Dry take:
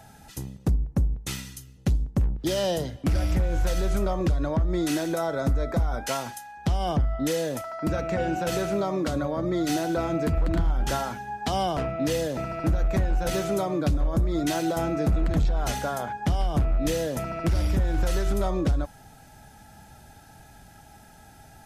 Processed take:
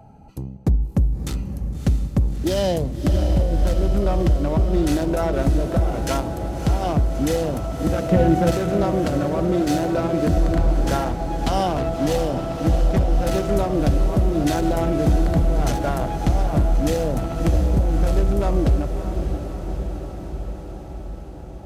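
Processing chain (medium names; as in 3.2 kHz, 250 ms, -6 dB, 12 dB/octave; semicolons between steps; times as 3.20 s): local Wiener filter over 25 samples; 8.11–8.51 s: bass shelf 450 Hz +10 dB; echo that smears into a reverb 623 ms, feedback 69%, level -8 dB; trim +5 dB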